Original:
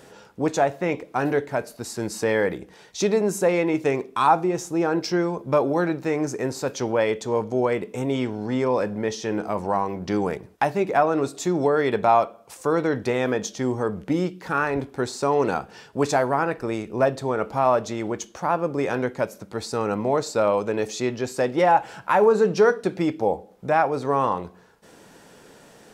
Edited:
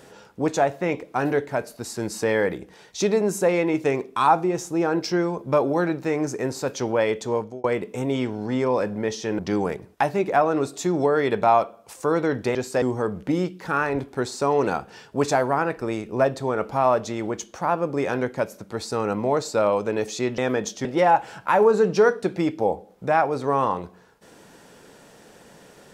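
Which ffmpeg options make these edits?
-filter_complex "[0:a]asplit=7[a][b][c][d][e][f][g];[a]atrim=end=7.64,asetpts=PTS-STARTPTS,afade=t=out:st=7.32:d=0.32[h];[b]atrim=start=7.64:end=9.392,asetpts=PTS-STARTPTS,afade=t=in:d=0.004:c=hsin[i];[c]atrim=start=9.998:end=13.162[j];[d]atrim=start=21.188:end=21.462[k];[e]atrim=start=13.628:end=21.192[l];[f]atrim=start=13.158:end=13.632[m];[g]atrim=start=21.458[n];[h][i]concat=n=2:v=0:a=1[o];[o][j]acrossfade=d=0.004:c1=hsin:c2=hsin[p];[p][k]acrossfade=d=0.004:c1=hsin:c2=hsin[q];[q][l]acrossfade=d=0.004:c1=hsin:c2=hsin[r];[r][m]acrossfade=d=0.004:c1=hsin:c2=hsin[s];[s][n]acrossfade=d=0.004:c1=hsin:c2=hsin"

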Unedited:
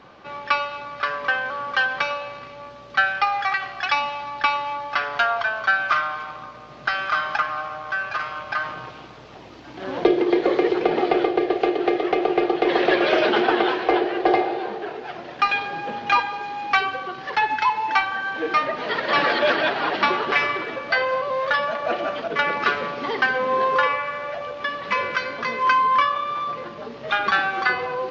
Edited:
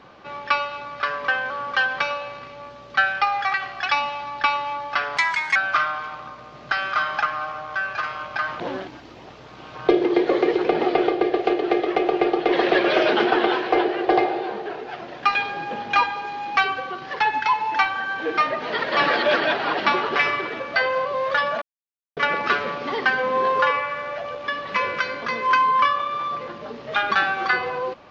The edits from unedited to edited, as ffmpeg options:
-filter_complex "[0:a]asplit=7[a][b][c][d][e][f][g];[a]atrim=end=5.174[h];[b]atrim=start=5.17:end=5.72,asetpts=PTS-STARTPTS,asetrate=62622,aresample=44100[i];[c]atrim=start=5.716:end=8.762[j];[d]atrim=start=8.758:end=10.052,asetpts=PTS-STARTPTS,areverse[k];[e]atrim=start=10.048:end=21.78,asetpts=PTS-STARTPTS,afade=t=out:st=11.728:d=0.004:c=hsin[l];[f]atrim=start=21.78:end=22.33,asetpts=PTS-STARTPTS,volume=0[m];[g]atrim=start=22.33,asetpts=PTS-STARTPTS,afade=t=in:d=0.004:c=hsin[n];[h][i]acrossfade=d=0.004:c1=hsin:c2=hsin[o];[o][j]acrossfade=d=0.004:c1=hsin:c2=hsin[p];[p][k]acrossfade=d=0.004:c1=hsin:c2=hsin[q];[l][m][n]concat=n=3:v=0:a=1[r];[q][r]acrossfade=d=0.004:c1=hsin:c2=hsin"

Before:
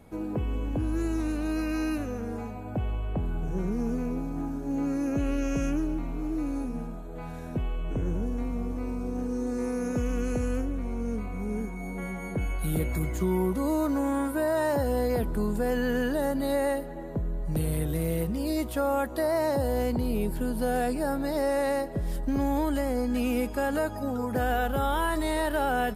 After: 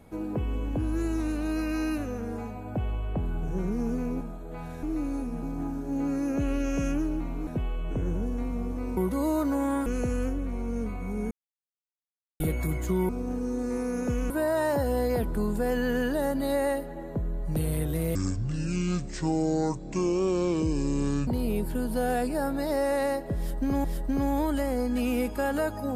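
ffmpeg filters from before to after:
-filter_complex "[0:a]asplit=14[a][b][c][d][e][f][g][h][i][j][k][l][m][n];[a]atrim=end=4.212[o];[b]atrim=start=6.848:end=7.472[p];[c]atrim=start=6.248:end=6.852[q];[d]atrim=start=4.208:end=6.252[r];[e]atrim=start=7.468:end=8.972[s];[f]atrim=start=13.408:end=14.302[t];[g]atrim=start=10.178:end=11.63,asetpts=PTS-STARTPTS,afade=t=out:st=1.448:d=0.004:c=hsin[u];[h]atrim=start=11.63:end=12.72,asetpts=PTS-STARTPTS,volume=0[v];[i]atrim=start=12.72:end=13.412,asetpts=PTS-STARTPTS,afade=t=in:d=0.004:c=hsin[w];[j]atrim=start=8.968:end=10.182[x];[k]atrim=start=14.298:end=18.154[y];[l]atrim=start=18.15:end=19.93,asetpts=PTS-STARTPTS,asetrate=25137,aresample=44100[z];[m]atrim=start=19.926:end=22.502[aa];[n]atrim=start=22.028[ab];[o][p]acrossfade=d=0.004:c1=hsin:c2=hsin[ac];[ac][q]acrossfade=d=0.004:c1=hsin:c2=hsin[ad];[ad][r]acrossfade=d=0.004:c1=hsin:c2=hsin[ae];[ae][s]acrossfade=d=0.004:c1=hsin:c2=hsin[af];[af][t]acrossfade=d=0.004:c1=hsin:c2=hsin[ag];[u][v][w]concat=n=3:v=0:a=1[ah];[ag][ah]acrossfade=d=0.004:c1=hsin:c2=hsin[ai];[ai][x]acrossfade=d=0.004:c1=hsin:c2=hsin[aj];[aj][y]acrossfade=d=0.004:c1=hsin:c2=hsin[ak];[ak][z]acrossfade=d=0.004:c1=hsin:c2=hsin[al];[al][aa]acrossfade=d=0.004:c1=hsin:c2=hsin[am];[am][ab]acrossfade=d=0.004:c1=hsin:c2=hsin"

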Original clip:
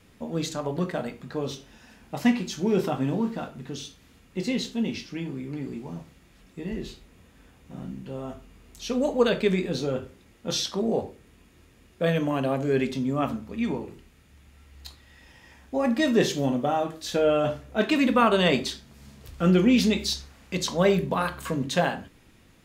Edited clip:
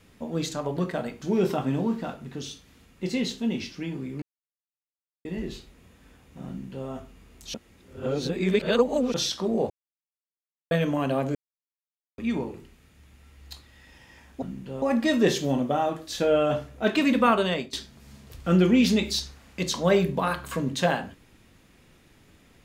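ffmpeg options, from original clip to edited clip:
-filter_complex "[0:a]asplit=13[a][b][c][d][e][f][g][h][i][j][k][l][m];[a]atrim=end=1.222[n];[b]atrim=start=2.558:end=5.56,asetpts=PTS-STARTPTS,afade=t=out:st=2.998:d=0.004:c=hsin[o];[c]atrim=start=5.56:end=6.59,asetpts=PTS-STARTPTS,volume=0[p];[d]atrim=start=6.59:end=8.882,asetpts=PTS-STARTPTS,afade=t=in:d=0.004:c=hsin[q];[e]atrim=start=8.878:end=10.482,asetpts=PTS-STARTPTS,areverse[r];[f]atrim=start=10.478:end=11.04,asetpts=PTS-STARTPTS,afade=t=out:st=0.558:d=0.004:c=hsin[s];[g]atrim=start=11.04:end=12.05,asetpts=PTS-STARTPTS,volume=0[t];[h]atrim=start=12.05:end=12.69,asetpts=PTS-STARTPTS,afade=t=in:d=0.004:c=hsin,afade=t=out:st=0.636:d=0.004:c=hsin[u];[i]atrim=start=12.69:end=13.52,asetpts=PTS-STARTPTS,volume=0[v];[j]atrim=start=13.52:end=15.762,asetpts=PTS-STARTPTS,afade=t=in:d=0.004:c=hsin[w];[k]atrim=start=7.818:end=8.222[x];[l]atrim=start=15.758:end=18.67,asetpts=PTS-STARTPTS,afade=t=out:st=2.462:d=0.45:silence=0.105925[y];[m]atrim=start=18.67,asetpts=PTS-STARTPTS,afade=t=in:d=0.004:c=hsin:silence=0.105925[z];[o][p][q]concat=n=3:v=0:a=1[aa];[n][aa]acrossfade=d=0.004:c1=hsin:c2=hsin[ab];[ab][r]acrossfade=d=0.004:c1=hsin:c2=hsin[ac];[s][t][u][v][w]concat=n=5:v=0:a=1[ad];[ac][ad]acrossfade=d=0.004:c1=hsin:c2=hsin[ae];[ae][x]acrossfade=d=0.004:c1=hsin:c2=hsin[af];[y][z]concat=n=2:v=0:a=1[ag];[af][ag]acrossfade=d=0.004:c1=hsin:c2=hsin"

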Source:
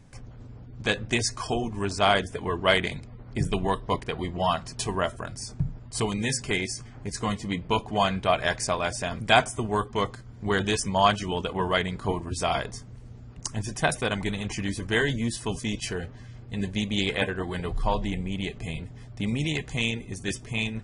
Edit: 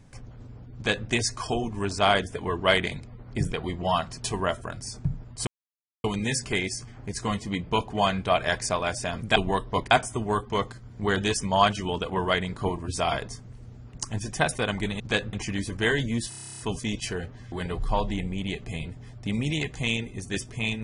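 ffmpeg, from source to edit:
-filter_complex "[0:a]asplit=18[a][b][c][d][e][f][g][h][i][j][k][l][m][n][o][p][q][r];[a]atrim=end=3.522[s];[b]atrim=start=4.068:end=6.02,asetpts=PTS-STARTPTS,afade=t=out:st=1.948:d=0.004:c=hsin,apad=pad_dur=0.57[t];[c]atrim=start=6.02:end=9.342,asetpts=PTS-STARTPTS,afade=t=in:d=0.004:c=hsin[u];[d]atrim=start=3.518:end=4.072[v];[e]atrim=start=9.338:end=14.432[w];[f]atrim=start=0.748:end=1.082[x];[g]atrim=start=14.428:end=15.422[y];[h]atrim=start=15.388:end=15.422[z];[i]atrim=start=15.388:end=15.422[aa];[j]atrim=start=15.388:end=15.422[ab];[k]atrim=start=15.388:end=15.422[ac];[l]atrim=start=15.388:end=15.422[ad];[m]atrim=start=15.388:end=15.422[ae];[n]atrim=start=15.388:end=15.422[af];[o]atrim=start=15.388:end=15.422[ag];[p]atrim=start=15.388:end=15.422[ah];[q]atrim=start=15.388:end=16.322[ai];[r]atrim=start=17.458[aj];[t][u]concat=n=2:v=0:a=1[ak];[s][ak]acrossfade=d=0.004:c1=hsin:c2=hsin[al];[al][v]acrossfade=d=0.004:c1=hsin:c2=hsin[am];[am][w]acrossfade=d=0.004:c1=hsin:c2=hsin[an];[an][x]acrossfade=d=0.004:c1=hsin:c2=hsin[ao];[ao][y]acrossfade=d=0.004:c1=hsin:c2=hsin[ap];[ap][z]acrossfade=d=0.004:c1=hsin:c2=hsin[aq];[aq][aa]acrossfade=d=0.004:c1=hsin:c2=hsin[ar];[ar][ab]acrossfade=d=0.004:c1=hsin:c2=hsin[as];[as][ac]acrossfade=d=0.004:c1=hsin:c2=hsin[at];[at][ad]acrossfade=d=0.004:c1=hsin:c2=hsin[au];[au][ae]acrossfade=d=0.004:c1=hsin:c2=hsin[av];[av][af]acrossfade=d=0.004:c1=hsin:c2=hsin[aw];[aw][ag]acrossfade=d=0.004:c1=hsin:c2=hsin[ax];[ax][ah]acrossfade=d=0.004:c1=hsin:c2=hsin[ay];[ay][ai]acrossfade=d=0.004:c1=hsin:c2=hsin[az];[az][aj]acrossfade=d=0.004:c1=hsin:c2=hsin"

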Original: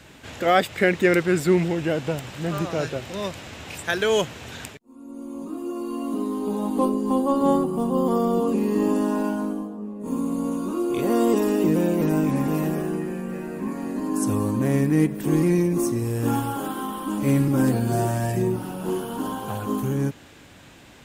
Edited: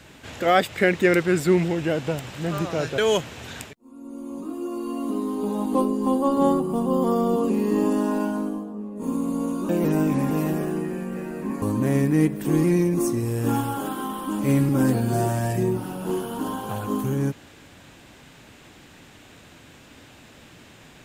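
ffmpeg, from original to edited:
-filter_complex "[0:a]asplit=4[a][b][c][d];[a]atrim=end=2.982[e];[b]atrim=start=4.018:end=10.732[f];[c]atrim=start=11.858:end=13.792[g];[d]atrim=start=14.408[h];[e][f]acrossfade=d=0.004:c1=hsin:c2=hsin[i];[i][g]acrossfade=d=0.004:c1=hsin:c2=hsin[j];[j][h]acrossfade=d=0.004:c1=hsin:c2=hsin"

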